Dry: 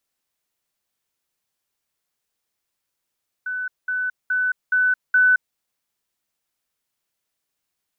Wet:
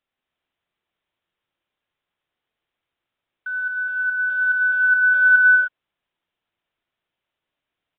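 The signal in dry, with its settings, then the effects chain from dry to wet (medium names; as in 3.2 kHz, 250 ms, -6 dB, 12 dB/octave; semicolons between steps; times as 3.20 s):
level ladder 1.5 kHz -24 dBFS, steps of 3 dB, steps 5, 0.22 s 0.20 s
block-companded coder 5-bit; gated-style reverb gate 330 ms rising, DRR 0 dB; resampled via 8 kHz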